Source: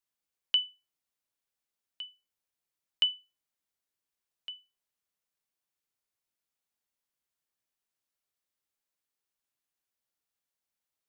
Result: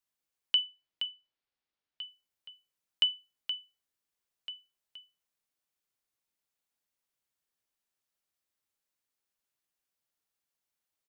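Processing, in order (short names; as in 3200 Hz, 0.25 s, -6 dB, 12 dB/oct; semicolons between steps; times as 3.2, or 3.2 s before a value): 0.58–2.02 LPF 4800 Hz 24 dB/oct; echo 0.472 s -8.5 dB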